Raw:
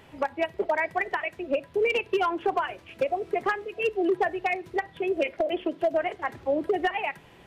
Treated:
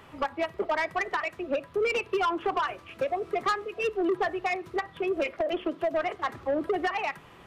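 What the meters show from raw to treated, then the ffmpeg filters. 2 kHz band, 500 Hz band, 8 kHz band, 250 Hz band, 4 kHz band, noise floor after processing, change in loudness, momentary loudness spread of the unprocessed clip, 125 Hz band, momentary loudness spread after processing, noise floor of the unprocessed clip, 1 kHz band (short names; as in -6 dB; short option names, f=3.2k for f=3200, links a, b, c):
-2.0 dB, -2.5 dB, n/a, -1.5 dB, -0.5 dB, -52 dBFS, -1.5 dB, 6 LU, 0.0 dB, 5 LU, -53 dBFS, -1.0 dB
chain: -filter_complex "[0:a]equalizer=f=1.2k:w=4.2:g=11.5,acrossover=split=220[a][b];[b]asoftclip=type=tanh:threshold=-21.5dB[c];[a][c]amix=inputs=2:normalize=0"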